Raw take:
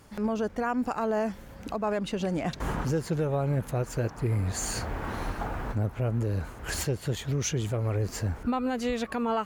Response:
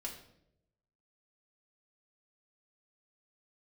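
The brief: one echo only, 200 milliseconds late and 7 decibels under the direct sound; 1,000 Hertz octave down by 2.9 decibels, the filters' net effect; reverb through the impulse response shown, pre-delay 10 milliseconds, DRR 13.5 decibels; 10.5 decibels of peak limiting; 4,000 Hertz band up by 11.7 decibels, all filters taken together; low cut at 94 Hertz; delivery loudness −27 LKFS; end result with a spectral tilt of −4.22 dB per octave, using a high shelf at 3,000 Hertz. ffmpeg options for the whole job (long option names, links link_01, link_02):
-filter_complex "[0:a]highpass=94,equalizer=frequency=1000:width_type=o:gain=-5.5,highshelf=frequency=3000:gain=8,equalizer=frequency=4000:width_type=o:gain=8.5,alimiter=limit=-20dB:level=0:latency=1,aecho=1:1:200:0.447,asplit=2[link_01][link_02];[1:a]atrim=start_sample=2205,adelay=10[link_03];[link_02][link_03]afir=irnorm=-1:irlink=0,volume=-12dB[link_04];[link_01][link_04]amix=inputs=2:normalize=0,volume=2.5dB"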